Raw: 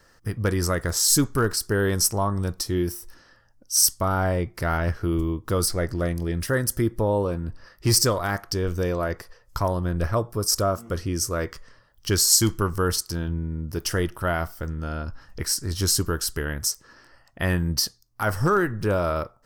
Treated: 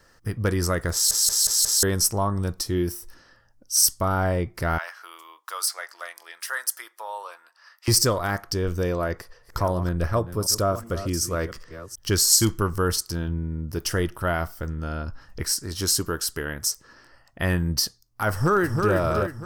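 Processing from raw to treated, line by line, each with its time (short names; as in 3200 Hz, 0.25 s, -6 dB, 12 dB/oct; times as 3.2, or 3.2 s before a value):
0.93 stutter in place 0.18 s, 5 plays
4.78–7.88 HPF 870 Hz 24 dB/oct
8.98–12.45 reverse delay 0.372 s, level -12.5 dB
15.52–16.67 low shelf 120 Hz -10 dB
18.31–18.94 echo throw 0.32 s, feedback 50%, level -4.5 dB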